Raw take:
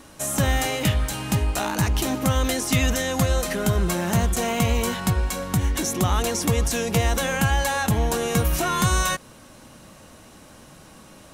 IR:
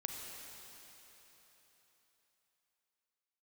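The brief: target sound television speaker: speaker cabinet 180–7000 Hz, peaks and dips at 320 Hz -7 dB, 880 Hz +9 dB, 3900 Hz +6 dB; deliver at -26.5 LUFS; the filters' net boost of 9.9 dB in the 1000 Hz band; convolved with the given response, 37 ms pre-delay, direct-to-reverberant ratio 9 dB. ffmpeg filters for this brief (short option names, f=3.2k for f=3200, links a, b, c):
-filter_complex "[0:a]equalizer=f=1k:t=o:g=6.5,asplit=2[a][b];[1:a]atrim=start_sample=2205,adelay=37[c];[b][c]afir=irnorm=-1:irlink=0,volume=-9dB[d];[a][d]amix=inputs=2:normalize=0,highpass=f=180:w=0.5412,highpass=f=180:w=1.3066,equalizer=f=320:t=q:w=4:g=-7,equalizer=f=880:t=q:w=4:g=9,equalizer=f=3.9k:t=q:w=4:g=6,lowpass=f=7k:w=0.5412,lowpass=f=7k:w=1.3066,volume=-6dB"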